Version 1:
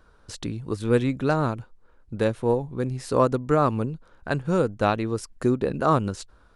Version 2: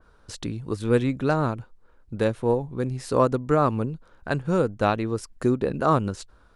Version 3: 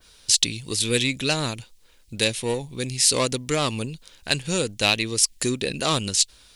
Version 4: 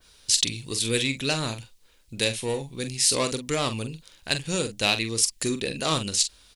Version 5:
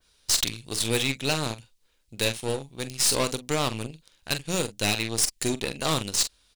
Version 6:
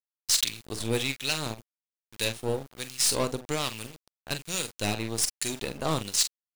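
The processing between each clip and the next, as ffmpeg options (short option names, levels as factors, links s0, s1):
-af "adynamicequalizer=threshold=0.0112:dfrequency=2600:dqfactor=0.7:tfrequency=2600:tqfactor=0.7:attack=5:release=100:ratio=0.375:range=2:mode=cutabove:tftype=highshelf"
-filter_complex "[0:a]asplit=2[s0][s1];[s1]asoftclip=type=tanh:threshold=0.1,volume=0.631[s2];[s0][s2]amix=inputs=2:normalize=0,aexciter=amount=11.9:drive=5.8:freq=2100,volume=0.473"
-filter_complex "[0:a]asplit=2[s0][s1];[s1]adelay=44,volume=0.335[s2];[s0][s2]amix=inputs=2:normalize=0,volume=0.708"
-af "aeval=exprs='0.178*(abs(mod(val(0)/0.178+3,4)-2)-1)':c=same,aeval=exprs='0.188*(cos(1*acos(clip(val(0)/0.188,-1,1)))-cos(1*PI/2))+0.0211*(cos(4*acos(clip(val(0)/0.188,-1,1)))-cos(4*PI/2))+0.0168*(cos(7*acos(clip(val(0)/0.188,-1,1)))-cos(7*PI/2))':c=same"
-filter_complex "[0:a]acrusher=bits=6:mix=0:aa=0.000001,acrossover=split=1400[s0][s1];[s0]aeval=exprs='val(0)*(1-0.7/2+0.7/2*cos(2*PI*1.2*n/s))':c=same[s2];[s1]aeval=exprs='val(0)*(1-0.7/2-0.7/2*cos(2*PI*1.2*n/s))':c=same[s3];[s2][s3]amix=inputs=2:normalize=0"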